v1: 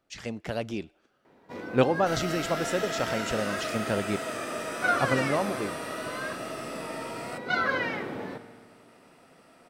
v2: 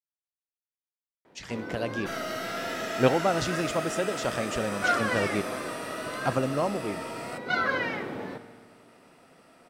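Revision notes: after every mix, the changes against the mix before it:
speech: entry +1.25 s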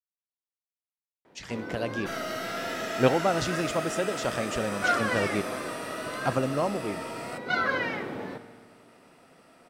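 none

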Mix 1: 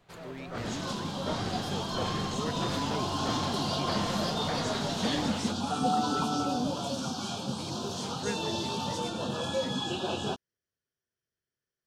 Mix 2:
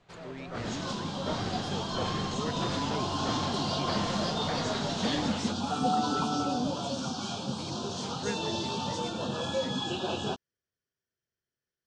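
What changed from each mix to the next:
master: add LPF 7800 Hz 24 dB/oct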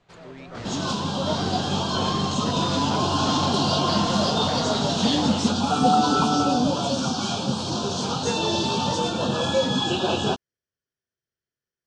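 second sound +9.0 dB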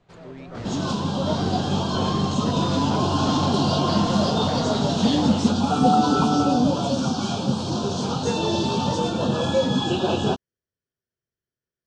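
master: add tilt shelf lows +3.5 dB, about 770 Hz

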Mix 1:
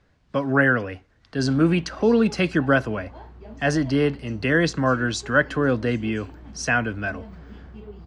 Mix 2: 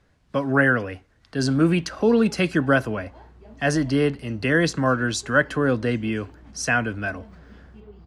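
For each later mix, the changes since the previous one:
speech: remove LPF 6800 Hz 12 dB/oct; background -5.0 dB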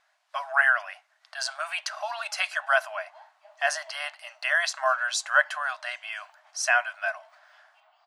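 master: add brick-wall FIR high-pass 590 Hz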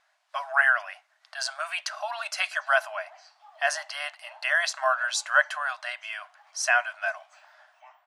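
background: entry +1.15 s

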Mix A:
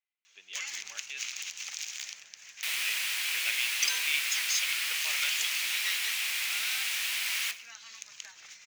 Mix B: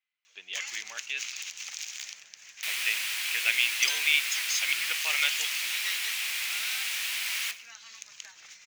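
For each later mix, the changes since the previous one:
speech +7.5 dB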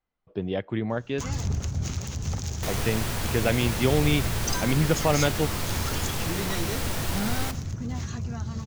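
first sound: entry +0.65 s; master: remove resonant high-pass 2400 Hz, resonance Q 2.8

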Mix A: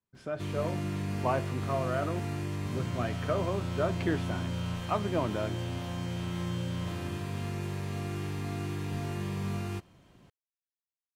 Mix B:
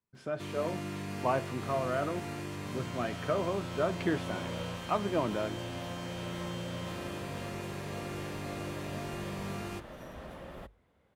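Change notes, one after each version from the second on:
first sound: add HPF 280 Hz 6 dB/oct; second sound: unmuted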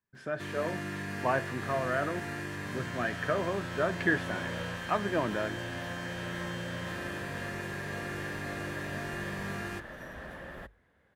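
master: add bell 1700 Hz +15 dB 0.29 oct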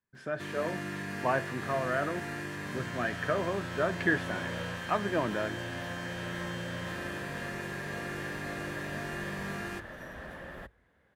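master: add notches 50/100 Hz

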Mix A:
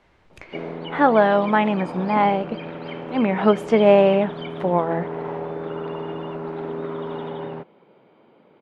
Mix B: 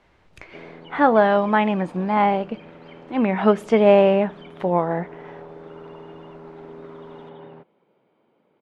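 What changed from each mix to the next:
background -10.5 dB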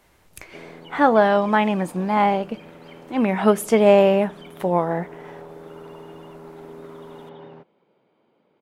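master: remove LPF 3600 Hz 12 dB/oct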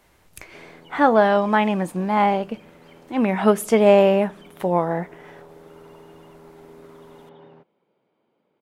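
background -5.5 dB

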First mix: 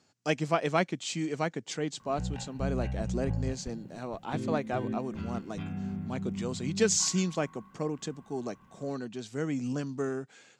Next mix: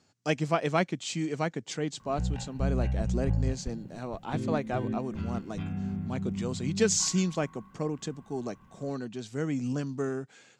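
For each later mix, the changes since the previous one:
master: add low shelf 100 Hz +8.5 dB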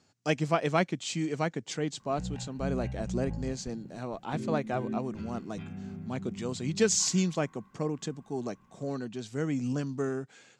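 background -8.0 dB; reverb: on, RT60 0.50 s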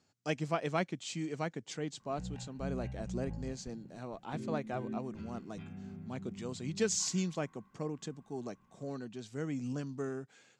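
speech -6.5 dB; background -5.5 dB

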